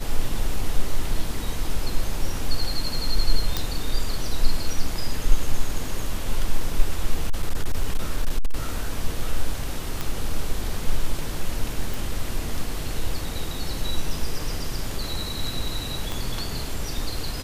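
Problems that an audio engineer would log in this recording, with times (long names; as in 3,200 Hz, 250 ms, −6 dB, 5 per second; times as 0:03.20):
0:03.57: click
0:07.14–0:08.56: clipping −14.5 dBFS
0:10.01: click
0:11.94: click
0:16.12: click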